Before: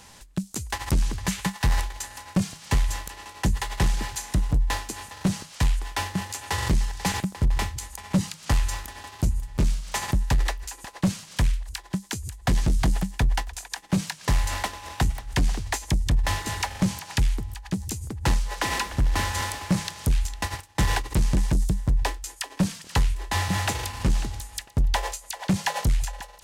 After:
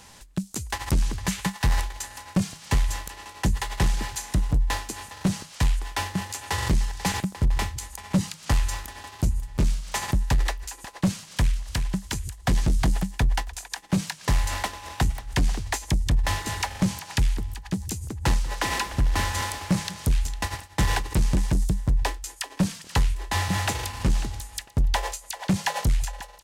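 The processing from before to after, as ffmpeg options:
-filter_complex "[0:a]asplit=2[a][b];[b]afade=t=in:st=11.19:d=0.01,afade=t=out:st=11.84:d=0.01,aecho=0:1:360|720|1080|1440:0.562341|0.196819|0.0688868|0.0241104[c];[a][c]amix=inputs=2:normalize=0,asettb=1/sr,asplit=3[d][e][f];[d]atrim=end=17.014[g];[e]atrim=start=17.01:end=21.61,asetpts=PTS-STARTPTS,afade=t=in:d=0.004:c=qsin,afade=t=out:st=4.596:d=0.004:c=qsin,aecho=1:1:191:0.112,atrim=end_sample=202860[h];[f]atrim=start=21.606[i];[g][h]acrossfade=d=0.004:c1=hsin:c2=qsin[j];[j][i]acrossfade=d=0.004:c1=qsin:c2=hsin"

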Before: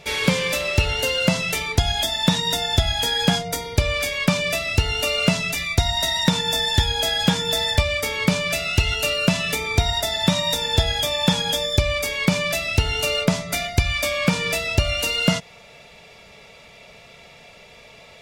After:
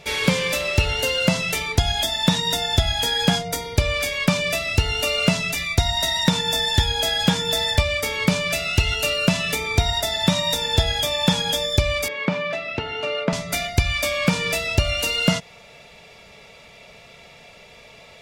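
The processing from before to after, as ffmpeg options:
-filter_complex "[0:a]asettb=1/sr,asplit=3[a][b][c];[a]atrim=end=12.084[d];[b]atrim=start=12.08:end=13.33,asetpts=PTS-STARTPTS,afade=t=in:d=0.004:c=qsin,afade=t=out:st=1.246:d=0.004:c=qsin,highpass=210,lowpass=2.2k[e];[c]atrim=start=13.326[f];[d][e]acrossfade=d=0.004:c1=hsin:c2=qsin[g];[g][f]acrossfade=d=0.004:c1=qsin:c2=hsin"

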